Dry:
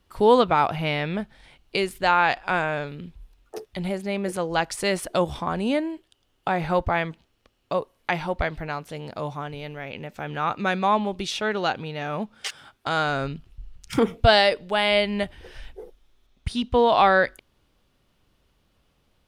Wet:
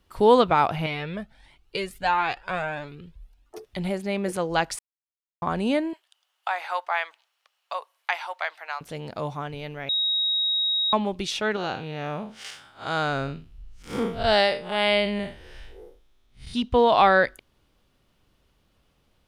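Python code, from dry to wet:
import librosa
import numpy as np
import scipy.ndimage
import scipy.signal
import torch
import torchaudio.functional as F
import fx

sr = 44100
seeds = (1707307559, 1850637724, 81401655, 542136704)

y = fx.comb_cascade(x, sr, direction='rising', hz=1.5, at=(0.86, 3.64))
y = fx.highpass(y, sr, hz=770.0, slope=24, at=(5.93, 8.81))
y = fx.spec_blur(y, sr, span_ms=131.0, at=(11.56, 16.54))
y = fx.edit(y, sr, fx.silence(start_s=4.79, length_s=0.63),
    fx.bleep(start_s=9.89, length_s=1.04, hz=3790.0, db=-21.0), tone=tone)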